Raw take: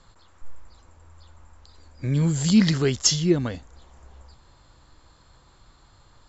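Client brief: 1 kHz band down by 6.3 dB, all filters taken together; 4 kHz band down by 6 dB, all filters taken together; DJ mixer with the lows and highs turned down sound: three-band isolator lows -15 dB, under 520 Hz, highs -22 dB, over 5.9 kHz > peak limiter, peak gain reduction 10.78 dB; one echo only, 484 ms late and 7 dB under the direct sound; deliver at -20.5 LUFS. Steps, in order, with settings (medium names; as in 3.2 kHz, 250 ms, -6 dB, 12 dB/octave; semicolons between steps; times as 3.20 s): three-band isolator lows -15 dB, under 520 Hz, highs -22 dB, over 5.9 kHz; peaking EQ 1 kHz -7.5 dB; peaking EQ 4 kHz -4.5 dB; delay 484 ms -7 dB; trim +15 dB; peak limiter -9 dBFS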